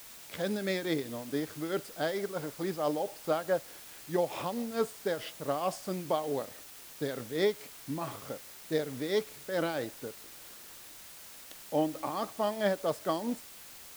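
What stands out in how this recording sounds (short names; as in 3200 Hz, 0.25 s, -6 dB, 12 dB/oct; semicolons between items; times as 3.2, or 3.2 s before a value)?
tremolo triangle 4.6 Hz, depth 70%; a quantiser's noise floor 8-bit, dither triangular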